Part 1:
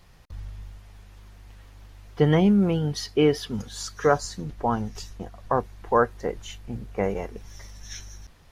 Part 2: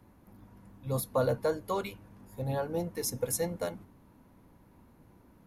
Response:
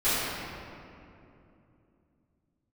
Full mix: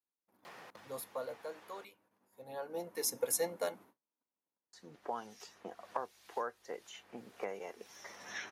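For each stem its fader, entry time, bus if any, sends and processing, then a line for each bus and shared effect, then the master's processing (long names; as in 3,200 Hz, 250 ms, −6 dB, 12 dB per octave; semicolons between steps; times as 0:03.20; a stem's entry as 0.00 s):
−14.0 dB, 0.45 s, muted 0:01.85–0:04.73, no send, multiband upward and downward compressor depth 100%; automatic ducking −11 dB, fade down 1.20 s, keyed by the second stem
0:00.78 −5.5 dB → 0:01.36 −13.5 dB → 0:02.28 −13.5 dB → 0:03.01 −0.5 dB, 0.00 s, no send, noise gate −53 dBFS, range −34 dB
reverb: not used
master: high-pass filter 410 Hz 12 dB per octave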